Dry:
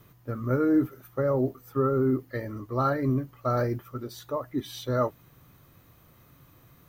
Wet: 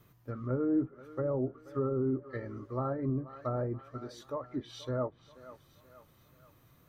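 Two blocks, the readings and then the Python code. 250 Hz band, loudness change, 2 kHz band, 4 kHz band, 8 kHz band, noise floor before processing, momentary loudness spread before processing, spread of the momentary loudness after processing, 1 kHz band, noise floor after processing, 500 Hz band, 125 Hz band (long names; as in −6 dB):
−6.5 dB, −7.0 dB, −11.5 dB, −7.5 dB, can't be measured, −58 dBFS, 11 LU, 14 LU, −10.0 dB, −64 dBFS, −6.5 dB, −6.5 dB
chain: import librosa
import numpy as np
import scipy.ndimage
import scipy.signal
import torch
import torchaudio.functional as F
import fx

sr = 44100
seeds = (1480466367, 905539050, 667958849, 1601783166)

y = fx.echo_thinned(x, sr, ms=481, feedback_pct=51, hz=300.0, wet_db=-17)
y = fx.wow_flutter(y, sr, seeds[0], rate_hz=2.1, depth_cents=26.0)
y = fx.env_lowpass_down(y, sr, base_hz=960.0, full_db=-22.5)
y = y * librosa.db_to_amplitude(-6.5)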